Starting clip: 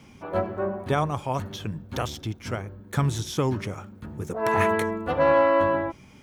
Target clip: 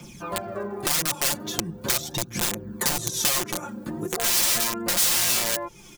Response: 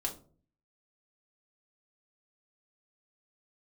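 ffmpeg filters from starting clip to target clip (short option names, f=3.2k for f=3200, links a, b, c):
-filter_complex "[0:a]acrossover=split=140|1400|4200[a][b][c][d];[a]aecho=1:1:113:0.316[e];[b]dynaudnorm=f=210:g=9:m=12.5dB[f];[e][f][c][d]amix=inputs=4:normalize=0,asetrate=45938,aresample=44100,aphaser=in_gain=1:out_gain=1:delay=3.8:decay=0.54:speed=0.4:type=triangular,aeval=exprs='(mod(4.47*val(0)+1,2)-1)/4.47':c=same,aecho=1:1:5.7:0.72,acompressor=threshold=-28dB:ratio=6,bass=f=250:g=0,treble=f=4k:g=13"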